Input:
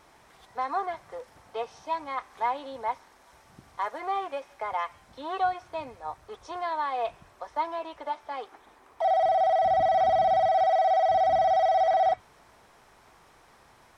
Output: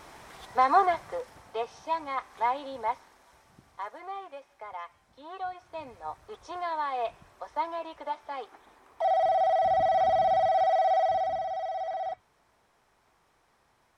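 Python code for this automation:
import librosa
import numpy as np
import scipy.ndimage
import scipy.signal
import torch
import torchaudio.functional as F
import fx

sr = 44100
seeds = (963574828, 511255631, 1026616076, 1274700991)

y = fx.gain(x, sr, db=fx.line((0.86, 8.0), (1.59, 0.5), (2.85, 0.5), (4.21, -9.5), (5.45, -9.5), (5.98, -1.5), (11.01, -1.5), (11.48, -10.5)))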